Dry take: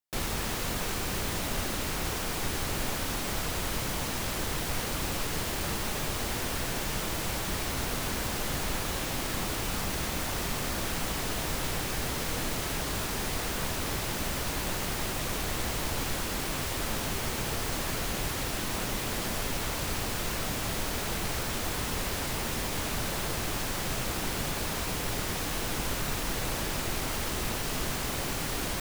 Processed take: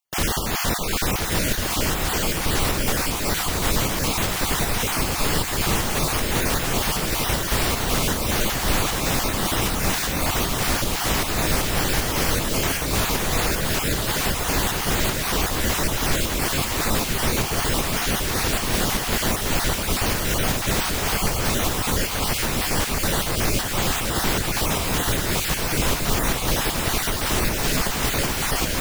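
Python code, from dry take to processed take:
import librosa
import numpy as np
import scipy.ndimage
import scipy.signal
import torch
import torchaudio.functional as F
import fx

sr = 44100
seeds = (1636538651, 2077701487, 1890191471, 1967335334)

p1 = fx.spec_dropout(x, sr, seeds[0], share_pct=21)
p2 = fx.volume_shaper(p1, sr, bpm=155, per_beat=1, depth_db=-10, release_ms=155.0, shape='slow start')
p3 = p1 + (p2 * 10.0 ** (1.5 / 20.0))
p4 = fx.echo_feedback(p3, sr, ms=1003, feedback_pct=58, wet_db=-9.5)
y = p4 * 10.0 ** (4.0 / 20.0)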